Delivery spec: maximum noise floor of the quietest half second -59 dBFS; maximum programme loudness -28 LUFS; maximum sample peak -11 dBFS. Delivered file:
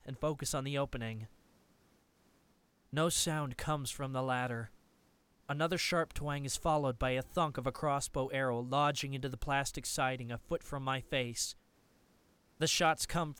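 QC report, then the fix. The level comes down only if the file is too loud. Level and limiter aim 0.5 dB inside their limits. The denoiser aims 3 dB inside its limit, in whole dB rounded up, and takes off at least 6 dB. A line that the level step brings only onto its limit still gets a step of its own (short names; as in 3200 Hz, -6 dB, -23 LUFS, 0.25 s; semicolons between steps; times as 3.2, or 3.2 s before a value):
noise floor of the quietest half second -71 dBFS: OK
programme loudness -35.0 LUFS: OK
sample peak -19.5 dBFS: OK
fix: none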